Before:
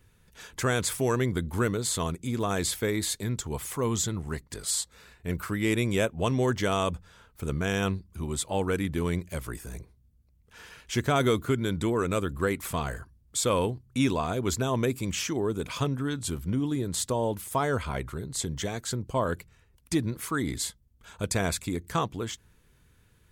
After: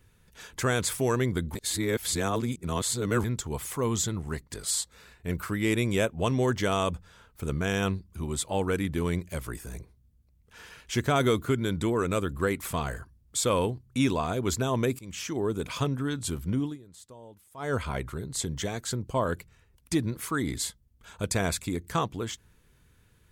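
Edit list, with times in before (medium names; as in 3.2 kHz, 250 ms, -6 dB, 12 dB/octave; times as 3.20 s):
1.55–3.24 s: reverse
14.99–15.45 s: fade in, from -18 dB
16.61–17.74 s: dip -20.5 dB, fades 0.17 s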